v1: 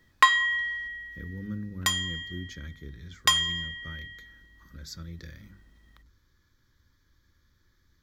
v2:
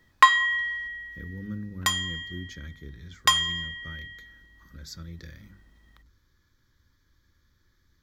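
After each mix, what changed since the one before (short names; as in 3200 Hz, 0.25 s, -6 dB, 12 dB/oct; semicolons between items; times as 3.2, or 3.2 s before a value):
background: add bell 1000 Hz +4 dB 1.3 oct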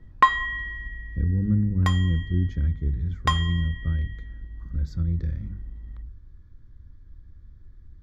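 master: add tilt -5 dB/oct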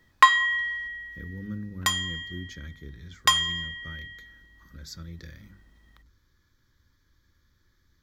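master: add tilt +5 dB/oct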